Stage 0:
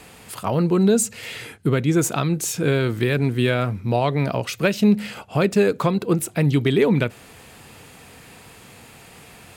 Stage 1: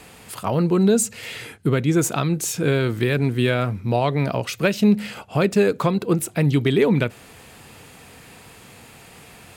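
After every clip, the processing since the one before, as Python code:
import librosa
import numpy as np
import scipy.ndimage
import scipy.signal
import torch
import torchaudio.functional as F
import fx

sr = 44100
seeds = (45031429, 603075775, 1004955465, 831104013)

y = x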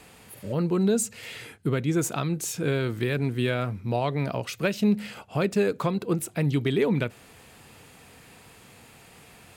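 y = fx.spec_repair(x, sr, seeds[0], start_s=0.3, length_s=0.2, low_hz=610.0, high_hz=9700.0, source='before')
y = F.gain(torch.from_numpy(y), -6.0).numpy()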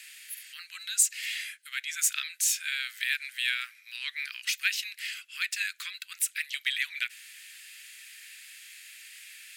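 y = scipy.signal.sosfilt(scipy.signal.butter(8, 1700.0, 'highpass', fs=sr, output='sos'), x)
y = F.gain(torch.from_numpy(y), 6.5).numpy()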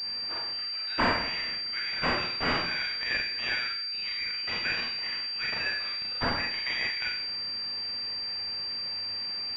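y = fx.rev_schroeder(x, sr, rt60_s=0.69, comb_ms=26, drr_db=-4.0)
y = fx.pwm(y, sr, carrier_hz=4700.0)
y = F.gain(torch.from_numpy(y), -1.5).numpy()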